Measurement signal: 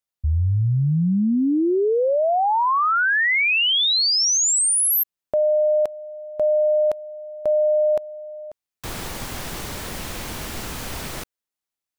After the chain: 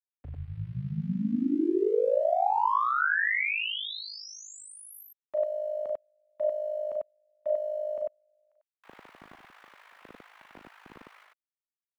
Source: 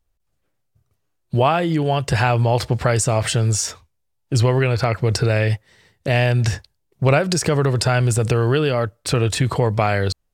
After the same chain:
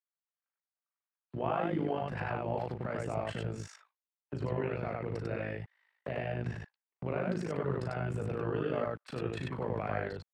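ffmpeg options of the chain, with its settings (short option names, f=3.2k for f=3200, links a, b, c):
-filter_complex "[0:a]agate=range=-15dB:threshold=-26dB:ratio=16:release=33:detection=peak,lowshelf=f=130:g=9.5,acrossover=split=820[a][b];[a]aeval=exprs='val(0)*gte(abs(val(0)),0.0211)':c=same[c];[c][b]amix=inputs=2:normalize=0,acompressor=threshold=-15dB:ratio=6:attack=0.35:release=419:detection=peak,alimiter=limit=-22dB:level=0:latency=1:release=86,tremolo=f=52:d=0.71,acrossover=split=190 2600:gain=0.2 1 0.0708[d][e][f];[d][e][f]amix=inputs=3:normalize=0,aecho=1:1:37.9|96.21:0.501|0.891"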